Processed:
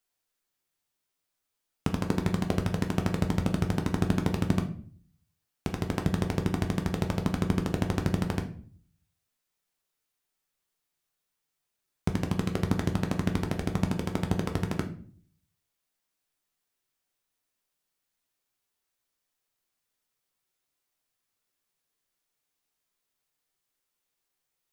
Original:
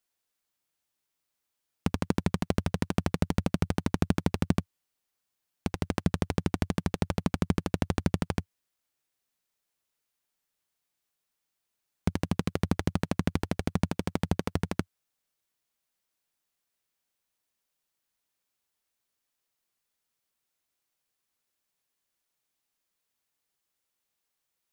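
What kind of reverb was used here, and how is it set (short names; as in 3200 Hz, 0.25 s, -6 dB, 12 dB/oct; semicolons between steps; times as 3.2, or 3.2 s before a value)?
shoebox room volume 46 m³, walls mixed, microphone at 0.4 m; gain -1 dB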